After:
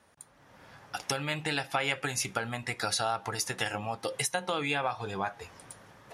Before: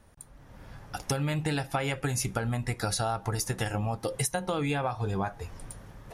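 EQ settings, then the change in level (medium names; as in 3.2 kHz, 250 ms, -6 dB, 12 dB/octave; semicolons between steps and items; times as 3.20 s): frequency weighting A; dynamic bell 2.9 kHz, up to +4 dB, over -49 dBFS, Q 0.91; bass shelf 140 Hz +11 dB; 0.0 dB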